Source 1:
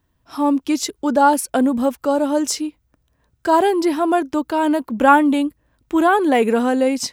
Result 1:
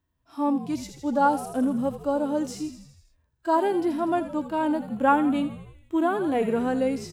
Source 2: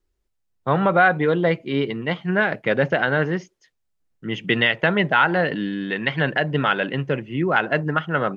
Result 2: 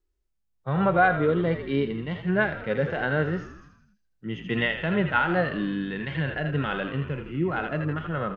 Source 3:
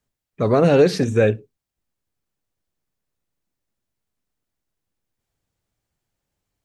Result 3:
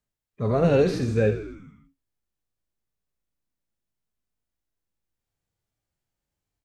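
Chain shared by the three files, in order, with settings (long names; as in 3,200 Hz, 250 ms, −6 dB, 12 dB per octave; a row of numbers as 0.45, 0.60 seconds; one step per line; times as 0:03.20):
echo with shifted repeats 81 ms, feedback 63%, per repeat −55 Hz, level −13 dB
harmonic and percussive parts rebalanced percussive −15 dB
normalise the peak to −9 dBFS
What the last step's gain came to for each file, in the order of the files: −7.0, −2.0, −2.0 decibels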